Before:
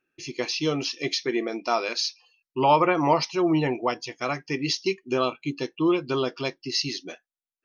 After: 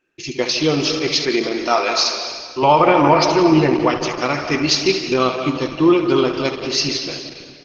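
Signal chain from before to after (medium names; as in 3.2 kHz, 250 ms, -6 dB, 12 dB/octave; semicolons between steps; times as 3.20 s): 1.25–2.62 s: high-pass 190 Hz -> 470 Hz 6 dB/octave; 4.03–5.10 s: treble shelf 3.2 kHz -> 2.1 kHz +3 dB; feedback delay 70 ms, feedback 18%, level -10 dB; on a send at -6.5 dB: reverberation RT60 1.9 s, pre-delay 113 ms; on the sum: loudness maximiser +9.5 dB; trim -1 dB; Opus 12 kbps 48 kHz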